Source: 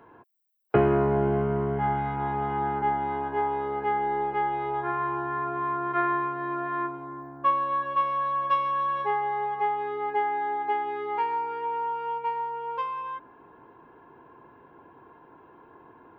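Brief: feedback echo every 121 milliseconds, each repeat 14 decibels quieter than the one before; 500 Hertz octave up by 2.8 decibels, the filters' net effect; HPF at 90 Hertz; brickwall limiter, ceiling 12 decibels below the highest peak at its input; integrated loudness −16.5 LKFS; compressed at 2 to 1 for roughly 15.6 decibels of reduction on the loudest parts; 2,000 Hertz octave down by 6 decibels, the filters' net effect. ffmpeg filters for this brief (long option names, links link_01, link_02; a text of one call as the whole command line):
ffmpeg -i in.wav -af "highpass=90,equalizer=frequency=500:width_type=o:gain=4,equalizer=frequency=2000:width_type=o:gain=-8,acompressor=threshold=-44dB:ratio=2,alimiter=level_in=10dB:limit=-24dB:level=0:latency=1,volume=-10dB,aecho=1:1:121|242:0.2|0.0399,volume=25.5dB" out.wav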